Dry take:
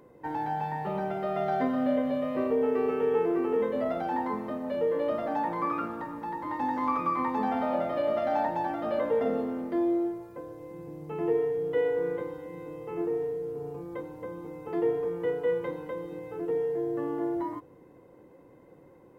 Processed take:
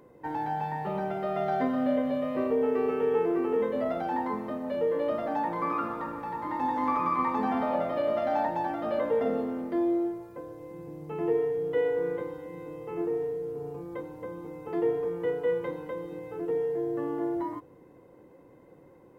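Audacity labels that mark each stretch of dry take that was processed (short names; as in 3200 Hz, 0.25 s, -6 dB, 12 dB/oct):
5.500000	7.410000	reverb throw, RT60 2.4 s, DRR 4 dB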